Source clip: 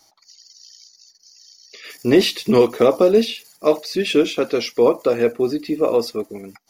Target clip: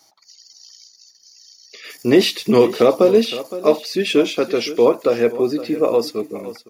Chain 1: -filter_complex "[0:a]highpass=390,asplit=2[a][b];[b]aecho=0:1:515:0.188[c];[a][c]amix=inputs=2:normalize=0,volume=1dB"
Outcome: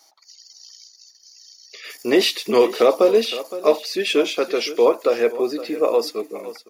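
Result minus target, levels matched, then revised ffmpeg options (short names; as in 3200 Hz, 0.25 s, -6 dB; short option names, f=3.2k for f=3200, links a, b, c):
125 Hz band -12.5 dB
-filter_complex "[0:a]highpass=100,asplit=2[a][b];[b]aecho=0:1:515:0.188[c];[a][c]amix=inputs=2:normalize=0,volume=1dB"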